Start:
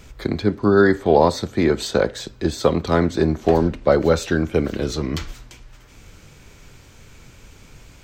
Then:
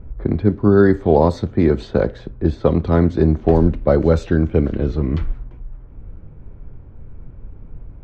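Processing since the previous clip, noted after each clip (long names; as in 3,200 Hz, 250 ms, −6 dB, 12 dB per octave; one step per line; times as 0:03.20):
low-pass that shuts in the quiet parts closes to 990 Hz, open at −11.5 dBFS
spectral tilt −3 dB per octave
level −2.5 dB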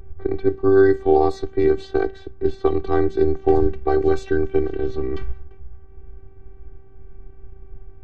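phases set to zero 386 Hz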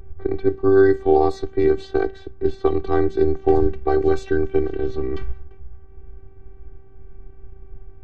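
no processing that can be heard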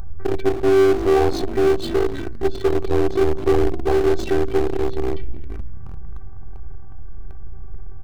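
echo with shifted repeats 245 ms, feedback 50%, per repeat −53 Hz, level −23.5 dB
phaser swept by the level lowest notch 360 Hz, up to 2,100 Hz, full sweep at −15 dBFS
power curve on the samples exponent 0.5
level −4 dB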